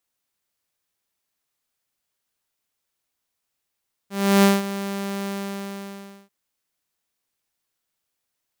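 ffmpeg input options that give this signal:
-f lavfi -i "aevalsrc='0.355*(2*mod(198*t,1)-1)':d=2.19:s=44100,afade=t=in:d=0.333,afade=t=out:st=0.333:d=0.186:silence=0.188,afade=t=out:st=1.16:d=1.03"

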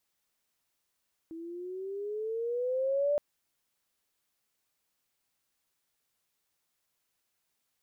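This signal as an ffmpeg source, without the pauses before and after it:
-f lavfi -i "aevalsrc='pow(10,(-24+15.5*(t/1.87-1))/20)*sin(2*PI*323*1.87/(10.5*log(2)/12)*(exp(10.5*log(2)/12*t/1.87)-1))':d=1.87:s=44100"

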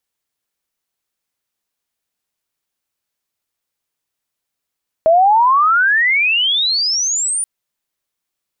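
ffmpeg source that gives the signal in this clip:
-f lavfi -i "aevalsrc='pow(10,(-7-9*t/2.38)/20)*sin(2*PI*630*2.38/log(9600/630)*(exp(log(9600/630)*t/2.38)-1))':d=2.38:s=44100"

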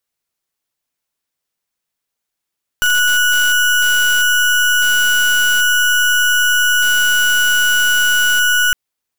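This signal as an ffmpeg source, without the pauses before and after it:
-f lavfi -i "aevalsrc='0.224*(2*lt(mod(1470*t,1),0.33)-1)':d=5.91:s=44100"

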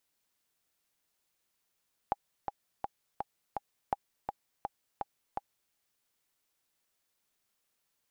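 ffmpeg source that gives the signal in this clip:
-f lavfi -i "aevalsrc='pow(10,(-15.5-5.5*gte(mod(t,5*60/166),60/166))/20)*sin(2*PI*811*mod(t,60/166))*exp(-6.91*mod(t,60/166)/0.03)':d=3.61:s=44100"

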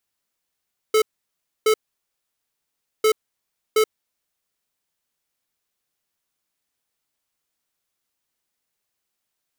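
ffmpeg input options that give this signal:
-f lavfi -i "aevalsrc='0.158*(2*lt(mod(434*t,1),0.5)-1)*clip(min(mod(mod(t,2.1),0.72),0.08-mod(mod(t,2.1),0.72))/0.005,0,1)*lt(mod(t,2.1),1.44)':d=4.2:s=44100"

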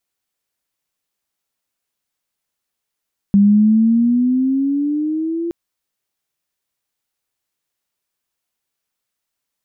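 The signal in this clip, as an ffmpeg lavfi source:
-f lavfi -i "aevalsrc='pow(10,(-7-12*t/2.17)/20)*sin(2*PI*198*2.17/(9.5*log(2)/12)*(exp(9.5*log(2)/12*t/2.17)-1))':d=2.17:s=44100"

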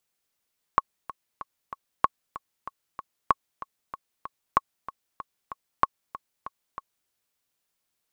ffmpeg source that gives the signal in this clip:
-f lavfi -i "aevalsrc='pow(10,(-5-17*gte(mod(t,4*60/190),60/190))/20)*sin(2*PI*1100*mod(t,60/190))*exp(-6.91*mod(t,60/190)/0.03)':d=6.31:s=44100"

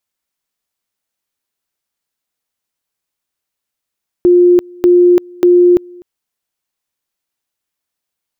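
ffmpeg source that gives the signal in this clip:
-f lavfi -i "aevalsrc='pow(10,(-4-27.5*gte(mod(t,0.59),0.34))/20)*sin(2*PI*354*t)':d=1.77:s=44100"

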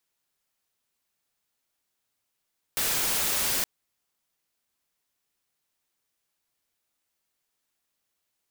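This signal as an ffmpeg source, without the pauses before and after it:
-f lavfi -i "anoisesrc=c=white:a=0.0819:d=0.87:r=44100:seed=1"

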